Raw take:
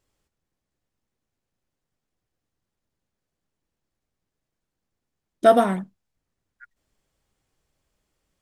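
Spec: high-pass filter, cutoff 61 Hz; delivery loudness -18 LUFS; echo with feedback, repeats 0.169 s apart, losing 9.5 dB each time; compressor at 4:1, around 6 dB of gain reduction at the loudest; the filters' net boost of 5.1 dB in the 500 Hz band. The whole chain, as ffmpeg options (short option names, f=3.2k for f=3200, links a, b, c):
-af "highpass=61,equalizer=f=500:t=o:g=8,acompressor=threshold=-11dB:ratio=4,aecho=1:1:169|338|507|676:0.335|0.111|0.0365|0.012,volume=1.5dB"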